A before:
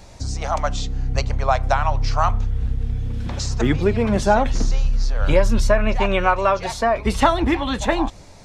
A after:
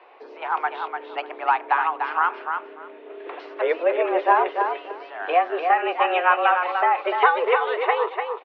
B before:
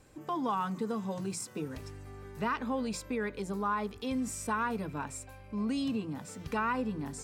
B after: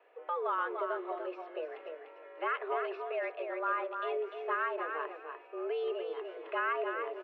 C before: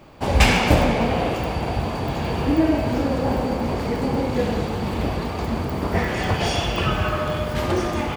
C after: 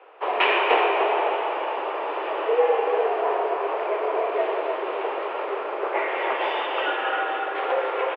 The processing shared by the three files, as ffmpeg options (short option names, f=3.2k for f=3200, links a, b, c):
-af "highpass=f=230:t=q:w=0.5412,highpass=f=230:t=q:w=1.307,lowpass=f=2.8k:t=q:w=0.5176,lowpass=f=2.8k:t=q:w=0.7071,lowpass=f=2.8k:t=q:w=1.932,afreqshift=170,aecho=1:1:296|592|888:0.501|0.0852|0.0145,volume=-1dB"